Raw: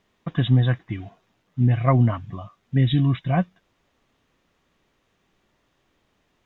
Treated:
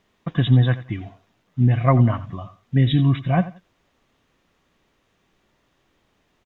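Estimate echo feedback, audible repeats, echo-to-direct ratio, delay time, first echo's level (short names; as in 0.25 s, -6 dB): 21%, 2, -16.0 dB, 87 ms, -16.0 dB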